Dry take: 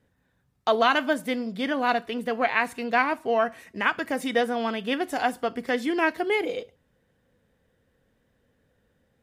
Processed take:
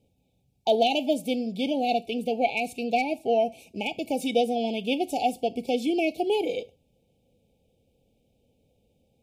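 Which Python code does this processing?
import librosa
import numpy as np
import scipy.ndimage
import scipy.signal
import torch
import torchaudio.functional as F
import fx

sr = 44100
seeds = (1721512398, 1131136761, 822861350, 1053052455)

y = np.clip(x, -10.0 ** (-10.0 / 20.0), 10.0 ** (-10.0 / 20.0))
y = fx.brickwall_bandstop(y, sr, low_hz=880.0, high_hz=2200.0)
y = y * 10.0 ** (1.0 / 20.0)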